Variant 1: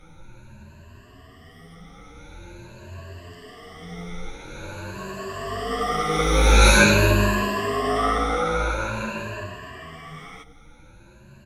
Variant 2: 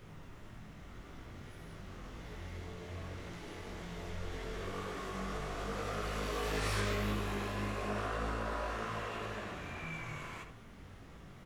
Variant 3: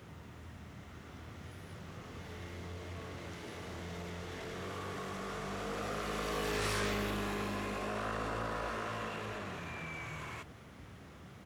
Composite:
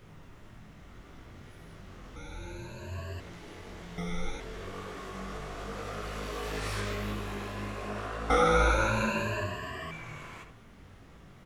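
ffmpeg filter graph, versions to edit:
-filter_complex "[0:a]asplit=3[s0][s1][s2];[1:a]asplit=4[s3][s4][s5][s6];[s3]atrim=end=2.162[s7];[s0]atrim=start=2.158:end=3.202[s8];[s4]atrim=start=3.198:end=3.982[s9];[s1]atrim=start=3.978:end=4.402[s10];[s5]atrim=start=4.398:end=8.302[s11];[s2]atrim=start=8.298:end=9.912[s12];[s6]atrim=start=9.908[s13];[s7][s8]acrossfade=d=0.004:c1=hsin:c2=hsin[s14];[s14][s9]acrossfade=d=0.004:c1=hsin:c2=hsin[s15];[s15][s10]acrossfade=d=0.004:c1=hsin:c2=hsin[s16];[s16][s11]acrossfade=d=0.004:c1=hsin:c2=hsin[s17];[s17][s12]acrossfade=d=0.004:c1=hsin:c2=hsin[s18];[s18][s13]acrossfade=d=0.004:c1=hsin:c2=hsin"

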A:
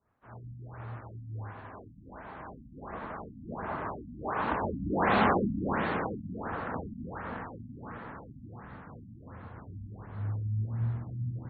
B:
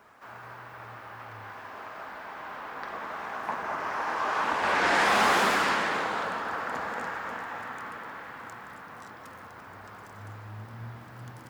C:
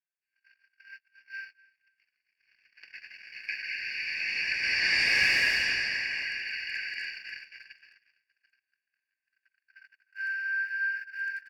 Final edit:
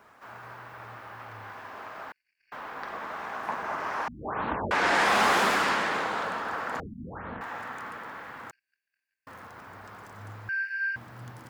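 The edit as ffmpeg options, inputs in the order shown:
-filter_complex "[2:a]asplit=3[s0][s1][s2];[0:a]asplit=2[s3][s4];[1:a]asplit=6[s5][s6][s7][s8][s9][s10];[s5]atrim=end=2.122[s11];[s0]atrim=start=2.118:end=2.522[s12];[s6]atrim=start=2.518:end=4.082[s13];[s3]atrim=start=4.078:end=4.712[s14];[s7]atrim=start=4.708:end=6.802[s15];[s4]atrim=start=6.798:end=7.412[s16];[s8]atrim=start=7.408:end=8.512[s17];[s1]atrim=start=8.508:end=9.272[s18];[s9]atrim=start=9.268:end=10.492[s19];[s2]atrim=start=10.488:end=10.962[s20];[s10]atrim=start=10.958[s21];[s11][s12]acrossfade=d=0.004:c1=hsin:c2=hsin[s22];[s22][s13]acrossfade=d=0.004:c1=hsin:c2=hsin[s23];[s23][s14]acrossfade=d=0.004:c1=hsin:c2=hsin[s24];[s24][s15]acrossfade=d=0.004:c1=hsin:c2=hsin[s25];[s25][s16]acrossfade=d=0.004:c1=hsin:c2=hsin[s26];[s26][s17]acrossfade=d=0.004:c1=hsin:c2=hsin[s27];[s27][s18]acrossfade=d=0.004:c1=hsin:c2=hsin[s28];[s28][s19]acrossfade=d=0.004:c1=hsin:c2=hsin[s29];[s29][s20]acrossfade=d=0.004:c1=hsin:c2=hsin[s30];[s30][s21]acrossfade=d=0.004:c1=hsin:c2=hsin"

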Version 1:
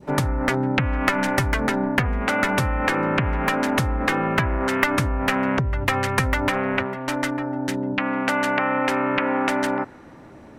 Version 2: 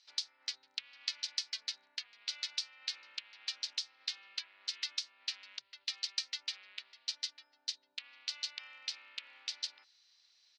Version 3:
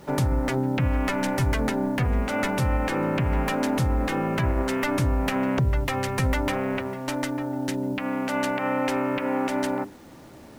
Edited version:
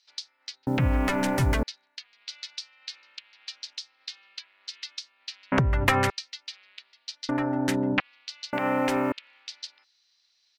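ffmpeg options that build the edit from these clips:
-filter_complex "[2:a]asplit=2[s0][s1];[0:a]asplit=2[s2][s3];[1:a]asplit=5[s4][s5][s6][s7][s8];[s4]atrim=end=0.672[s9];[s0]atrim=start=0.668:end=1.632[s10];[s5]atrim=start=1.628:end=5.522[s11];[s2]atrim=start=5.518:end=6.102[s12];[s6]atrim=start=6.098:end=7.292[s13];[s3]atrim=start=7.288:end=8.002[s14];[s7]atrim=start=7.998:end=8.532[s15];[s1]atrim=start=8.528:end=9.122[s16];[s8]atrim=start=9.118[s17];[s9][s10]acrossfade=d=0.004:c1=hsin:c2=hsin[s18];[s18][s11]acrossfade=d=0.004:c1=hsin:c2=hsin[s19];[s19][s12]acrossfade=d=0.004:c1=hsin:c2=hsin[s20];[s20][s13]acrossfade=d=0.004:c1=hsin:c2=hsin[s21];[s21][s14]acrossfade=d=0.004:c1=hsin:c2=hsin[s22];[s22][s15]acrossfade=d=0.004:c1=hsin:c2=hsin[s23];[s23][s16]acrossfade=d=0.004:c1=hsin:c2=hsin[s24];[s24][s17]acrossfade=d=0.004:c1=hsin:c2=hsin"

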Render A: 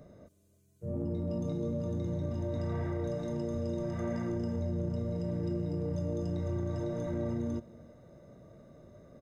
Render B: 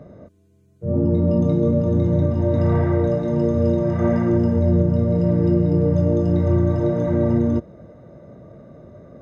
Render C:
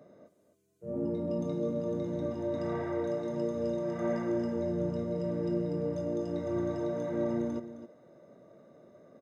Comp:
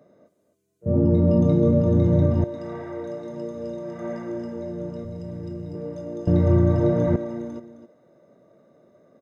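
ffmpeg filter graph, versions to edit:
-filter_complex "[1:a]asplit=2[s0][s1];[2:a]asplit=4[s2][s3][s4][s5];[s2]atrim=end=0.862[s6];[s0]atrim=start=0.858:end=2.442[s7];[s3]atrim=start=2.438:end=5.052[s8];[0:a]atrim=start=5.048:end=5.752[s9];[s4]atrim=start=5.748:end=6.272[s10];[s1]atrim=start=6.268:end=7.162[s11];[s5]atrim=start=7.158[s12];[s6][s7]acrossfade=d=0.004:c1=hsin:c2=hsin[s13];[s13][s8]acrossfade=d=0.004:c1=hsin:c2=hsin[s14];[s14][s9]acrossfade=d=0.004:c1=hsin:c2=hsin[s15];[s15][s10]acrossfade=d=0.004:c1=hsin:c2=hsin[s16];[s16][s11]acrossfade=d=0.004:c1=hsin:c2=hsin[s17];[s17][s12]acrossfade=d=0.004:c1=hsin:c2=hsin"

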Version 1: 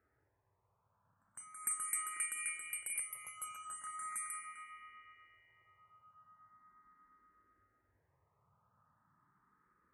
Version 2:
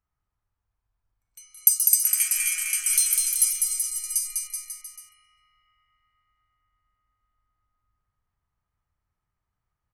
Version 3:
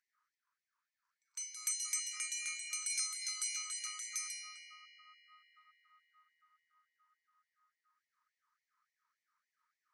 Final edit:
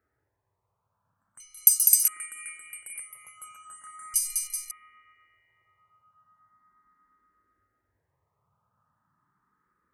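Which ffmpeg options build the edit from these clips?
-filter_complex "[1:a]asplit=2[s0][s1];[0:a]asplit=3[s2][s3][s4];[s2]atrim=end=1.402[s5];[s0]atrim=start=1.398:end=2.082[s6];[s3]atrim=start=2.078:end=4.142[s7];[s1]atrim=start=4.138:end=4.712[s8];[s4]atrim=start=4.708[s9];[s5][s6]acrossfade=d=0.004:c1=hsin:c2=hsin[s10];[s10][s7]acrossfade=d=0.004:c1=hsin:c2=hsin[s11];[s11][s8]acrossfade=d=0.004:c1=hsin:c2=hsin[s12];[s12][s9]acrossfade=d=0.004:c1=hsin:c2=hsin"

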